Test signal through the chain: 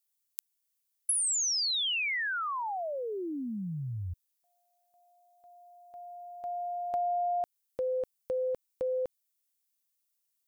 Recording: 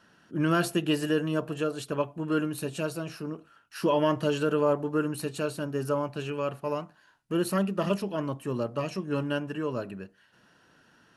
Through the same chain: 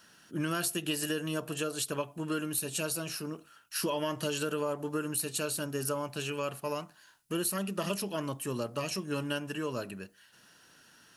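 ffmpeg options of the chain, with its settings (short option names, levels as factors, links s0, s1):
-af "crystalizer=i=5:c=0,acompressor=threshold=0.0562:ratio=6,volume=0.668"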